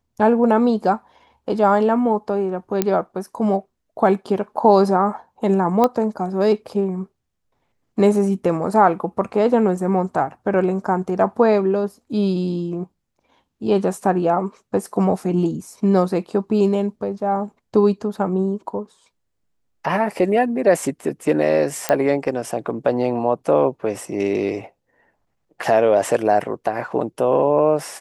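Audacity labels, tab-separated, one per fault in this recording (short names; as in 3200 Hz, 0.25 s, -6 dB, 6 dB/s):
2.820000	2.820000	pop -4 dBFS
5.840000	5.840000	pop -6 dBFS
21.890000	21.890000	pop -5 dBFS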